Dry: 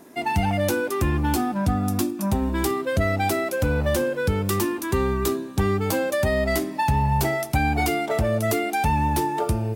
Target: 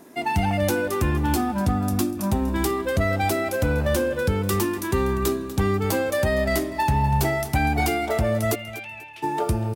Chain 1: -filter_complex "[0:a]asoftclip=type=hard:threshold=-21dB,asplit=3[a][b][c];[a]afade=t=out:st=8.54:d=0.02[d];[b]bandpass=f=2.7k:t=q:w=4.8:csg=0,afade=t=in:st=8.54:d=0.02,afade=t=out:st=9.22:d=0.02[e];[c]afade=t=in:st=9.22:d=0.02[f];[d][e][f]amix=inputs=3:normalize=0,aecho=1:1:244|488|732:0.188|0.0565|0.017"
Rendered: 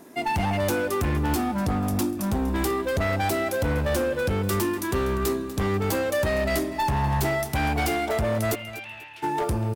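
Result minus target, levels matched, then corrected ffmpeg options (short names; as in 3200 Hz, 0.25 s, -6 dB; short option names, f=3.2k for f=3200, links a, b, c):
hard clip: distortion +22 dB
-filter_complex "[0:a]asoftclip=type=hard:threshold=-13dB,asplit=3[a][b][c];[a]afade=t=out:st=8.54:d=0.02[d];[b]bandpass=f=2.7k:t=q:w=4.8:csg=0,afade=t=in:st=8.54:d=0.02,afade=t=out:st=9.22:d=0.02[e];[c]afade=t=in:st=9.22:d=0.02[f];[d][e][f]amix=inputs=3:normalize=0,aecho=1:1:244|488|732:0.188|0.0565|0.017"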